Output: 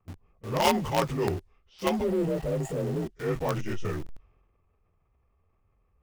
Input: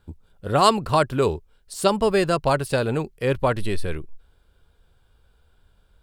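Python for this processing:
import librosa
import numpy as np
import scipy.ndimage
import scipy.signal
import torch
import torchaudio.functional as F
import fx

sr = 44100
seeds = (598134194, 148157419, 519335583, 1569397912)

p1 = fx.partial_stretch(x, sr, pct=87)
p2 = fx.spec_repair(p1, sr, seeds[0], start_s=2.06, length_s=0.94, low_hz=660.0, high_hz=6700.0, source='after')
p3 = fx.transient(p2, sr, attack_db=-3, sustain_db=6)
p4 = fx.env_lowpass(p3, sr, base_hz=1600.0, full_db=-21.0)
p5 = fx.quant_companded(p4, sr, bits=2)
p6 = p4 + (p5 * librosa.db_to_amplitude(-8.0))
y = p6 * librosa.db_to_amplitude(-7.0)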